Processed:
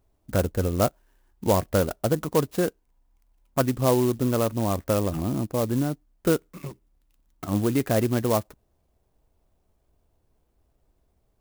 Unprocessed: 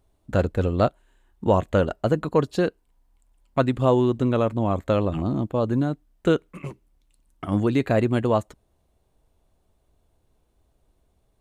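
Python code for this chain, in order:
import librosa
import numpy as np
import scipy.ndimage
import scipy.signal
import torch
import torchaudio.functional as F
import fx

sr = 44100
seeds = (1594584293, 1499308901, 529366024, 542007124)

y = fx.clock_jitter(x, sr, seeds[0], jitter_ms=0.064)
y = F.gain(torch.from_numpy(y), -2.0).numpy()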